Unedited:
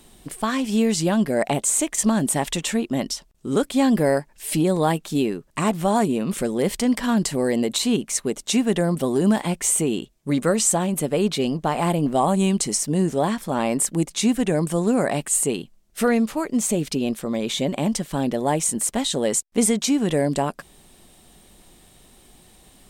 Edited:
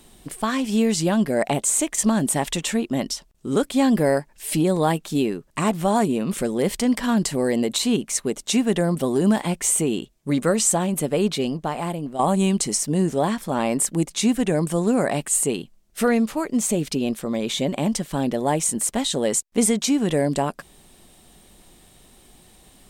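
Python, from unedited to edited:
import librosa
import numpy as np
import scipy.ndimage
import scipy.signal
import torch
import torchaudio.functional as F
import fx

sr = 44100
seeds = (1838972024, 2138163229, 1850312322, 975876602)

y = fx.edit(x, sr, fx.fade_out_to(start_s=11.25, length_s=0.94, floor_db=-11.5), tone=tone)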